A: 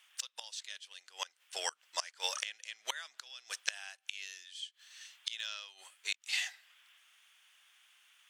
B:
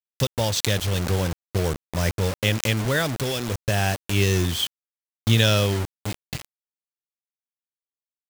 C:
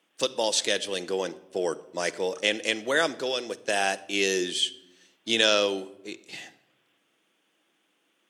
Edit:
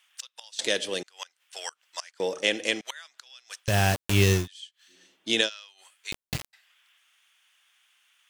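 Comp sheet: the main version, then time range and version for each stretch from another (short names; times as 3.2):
A
0.59–1.03 from C
2.2–2.81 from C
3.67–4.4 from B, crossfade 0.16 s
4.92–5.45 from C, crossfade 0.10 s
6.12–6.53 from B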